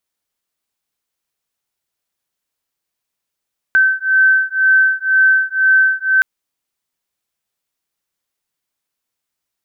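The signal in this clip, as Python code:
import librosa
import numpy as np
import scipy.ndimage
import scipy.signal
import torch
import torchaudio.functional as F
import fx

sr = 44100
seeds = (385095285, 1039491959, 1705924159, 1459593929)

y = fx.two_tone_beats(sr, length_s=2.47, hz=1540.0, beat_hz=2.0, level_db=-13.0)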